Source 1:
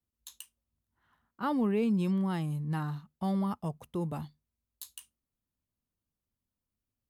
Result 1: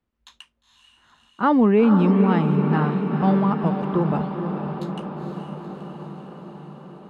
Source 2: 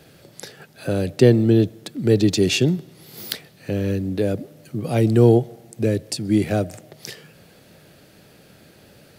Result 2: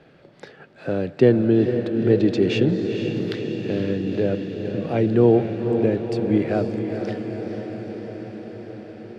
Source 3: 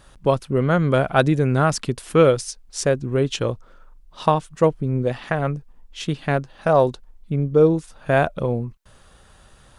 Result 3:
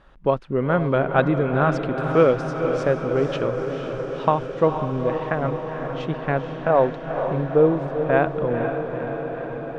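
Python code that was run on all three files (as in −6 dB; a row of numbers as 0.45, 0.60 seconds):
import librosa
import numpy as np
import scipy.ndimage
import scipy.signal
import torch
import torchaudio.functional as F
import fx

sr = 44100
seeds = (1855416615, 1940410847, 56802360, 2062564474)

p1 = scipy.signal.sosfilt(scipy.signal.butter(2, 2300.0, 'lowpass', fs=sr, output='sos'), x)
p2 = fx.peak_eq(p1, sr, hz=91.0, db=-7.5, octaves=1.4)
p3 = p2 + fx.echo_diffused(p2, sr, ms=477, feedback_pct=72, wet_db=-7.0, dry=0)
y = p3 * 10.0 ** (-22 / 20.0) / np.sqrt(np.mean(np.square(p3)))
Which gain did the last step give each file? +13.5, −0.5, −1.0 decibels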